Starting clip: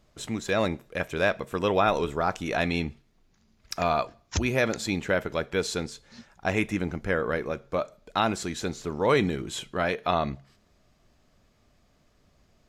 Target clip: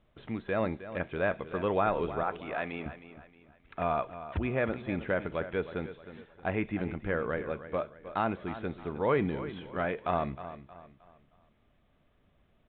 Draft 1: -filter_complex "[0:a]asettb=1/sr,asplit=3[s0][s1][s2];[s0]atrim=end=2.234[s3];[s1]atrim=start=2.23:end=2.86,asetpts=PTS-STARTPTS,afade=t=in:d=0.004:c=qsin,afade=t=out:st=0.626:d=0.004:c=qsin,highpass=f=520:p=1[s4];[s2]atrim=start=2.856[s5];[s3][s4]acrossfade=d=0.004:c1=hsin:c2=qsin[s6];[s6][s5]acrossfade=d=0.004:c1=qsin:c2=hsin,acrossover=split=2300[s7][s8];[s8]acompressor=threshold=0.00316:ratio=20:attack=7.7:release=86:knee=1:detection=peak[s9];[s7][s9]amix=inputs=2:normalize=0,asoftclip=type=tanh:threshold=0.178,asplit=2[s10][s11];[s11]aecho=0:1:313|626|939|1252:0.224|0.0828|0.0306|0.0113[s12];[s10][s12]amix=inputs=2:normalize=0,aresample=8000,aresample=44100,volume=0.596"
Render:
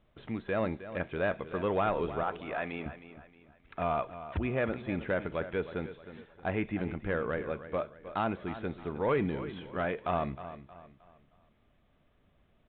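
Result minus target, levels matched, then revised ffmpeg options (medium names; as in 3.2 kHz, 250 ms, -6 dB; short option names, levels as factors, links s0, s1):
saturation: distortion +20 dB
-filter_complex "[0:a]asettb=1/sr,asplit=3[s0][s1][s2];[s0]atrim=end=2.234[s3];[s1]atrim=start=2.23:end=2.86,asetpts=PTS-STARTPTS,afade=t=in:d=0.004:c=qsin,afade=t=out:st=0.626:d=0.004:c=qsin,highpass=f=520:p=1[s4];[s2]atrim=start=2.856[s5];[s3][s4]acrossfade=d=0.004:c1=hsin:c2=qsin[s6];[s6][s5]acrossfade=d=0.004:c1=qsin:c2=hsin,acrossover=split=2300[s7][s8];[s8]acompressor=threshold=0.00316:ratio=20:attack=7.7:release=86:knee=1:detection=peak[s9];[s7][s9]amix=inputs=2:normalize=0,asoftclip=type=tanh:threshold=0.668,asplit=2[s10][s11];[s11]aecho=0:1:313|626|939|1252:0.224|0.0828|0.0306|0.0113[s12];[s10][s12]amix=inputs=2:normalize=0,aresample=8000,aresample=44100,volume=0.596"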